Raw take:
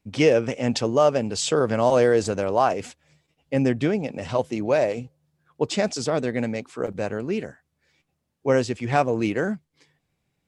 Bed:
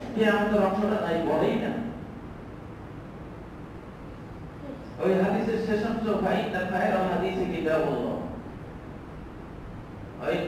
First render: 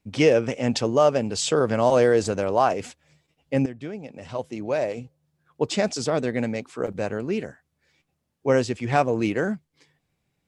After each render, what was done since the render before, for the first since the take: 3.66–5.71 fade in, from -15.5 dB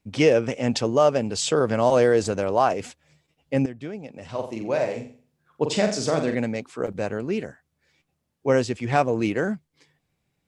4.28–6.35 flutter echo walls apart 7.6 m, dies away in 0.43 s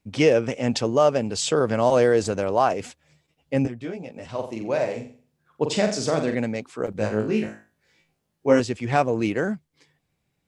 3.63–4.26 doubler 17 ms -2.5 dB; 6.97–8.6 flutter echo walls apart 3.2 m, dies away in 0.33 s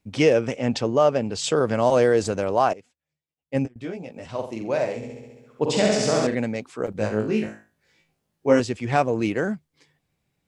0.56–1.44 high shelf 7500 Hz -11 dB; 2.73–3.76 upward expander 2.5:1, over -36 dBFS; 4.96–6.27 flutter echo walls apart 11.6 m, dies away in 1.4 s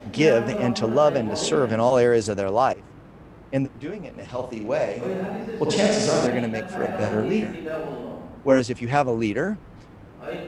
add bed -5 dB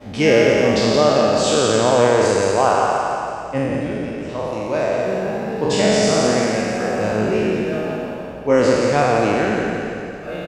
spectral trails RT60 2.49 s; on a send: feedback echo 0.173 s, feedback 50%, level -6 dB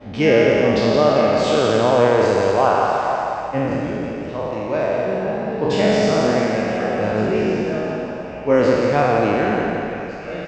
air absorption 140 m; delay with a stepping band-pass 0.486 s, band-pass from 820 Hz, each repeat 1.4 oct, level -8 dB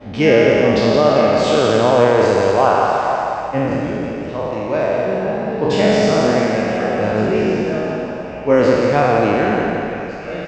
gain +2.5 dB; limiter -1 dBFS, peak gain reduction 1.5 dB

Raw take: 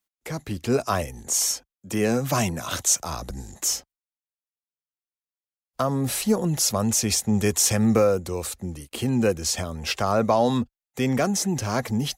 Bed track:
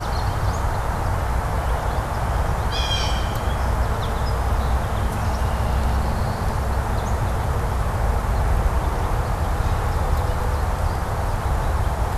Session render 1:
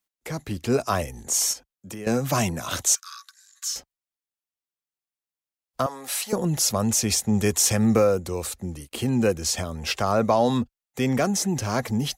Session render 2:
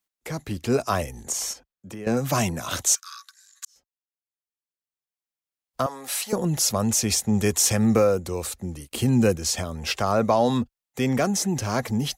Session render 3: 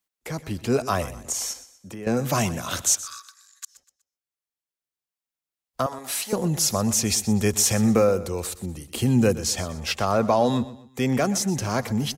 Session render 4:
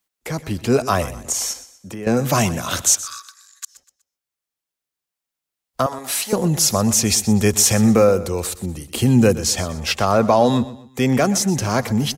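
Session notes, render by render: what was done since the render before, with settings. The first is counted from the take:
1.53–2.07 compressor 4:1, threshold -34 dBFS; 2.95–3.76 rippled Chebyshev high-pass 1100 Hz, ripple 9 dB; 5.86–6.33 HPF 770 Hz
1.32–2.17 high shelf 4100 Hz -8.5 dB; 3.65–5.88 fade in; 8.89–9.36 tone controls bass +5 dB, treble +4 dB
feedback echo 0.123 s, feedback 36%, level -16 dB
gain +5.5 dB; limiter -3 dBFS, peak gain reduction 1.5 dB

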